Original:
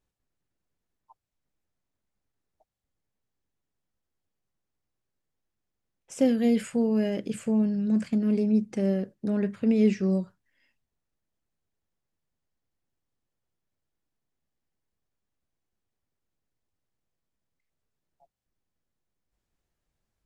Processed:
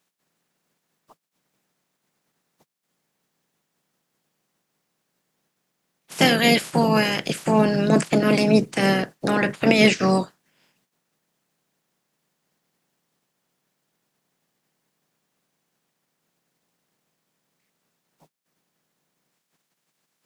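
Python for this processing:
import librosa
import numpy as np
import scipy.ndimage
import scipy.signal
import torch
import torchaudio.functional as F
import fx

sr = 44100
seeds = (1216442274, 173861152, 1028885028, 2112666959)

y = fx.spec_clip(x, sr, under_db=30)
y = fx.low_shelf_res(y, sr, hz=110.0, db=-12.0, q=3.0)
y = F.gain(torch.from_numpy(y), 4.5).numpy()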